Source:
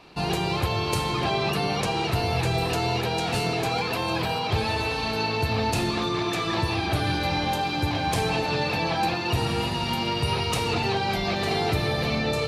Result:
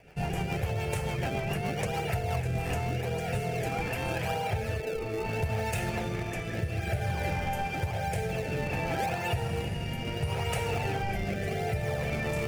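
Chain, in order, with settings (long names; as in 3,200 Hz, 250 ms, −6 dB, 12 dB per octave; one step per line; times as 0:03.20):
0:04.80–0:05.26: loudspeaker in its box 310–4,400 Hz, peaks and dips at 450 Hz +7 dB, 1,700 Hz −9 dB, 3,100 Hz −9 dB
phaser with its sweep stopped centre 1,100 Hz, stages 6
in parallel at −4.5 dB: sample-and-hold swept by an LFO 32×, swing 160% 0.83 Hz
on the sum: rotating-speaker cabinet horn 7 Hz, later 0.6 Hz, at 0:01.89
downward compressor 4 to 1, threshold −27 dBFS, peak gain reduction 8 dB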